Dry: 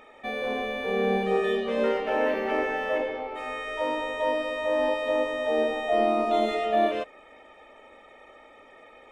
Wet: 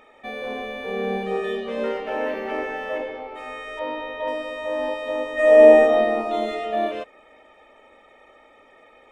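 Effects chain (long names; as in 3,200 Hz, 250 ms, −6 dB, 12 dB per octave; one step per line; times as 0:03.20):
0:03.79–0:04.28: low-pass filter 4,300 Hz 24 dB per octave
0:05.34–0:05.82: thrown reverb, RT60 1.7 s, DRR −10.5 dB
level −1 dB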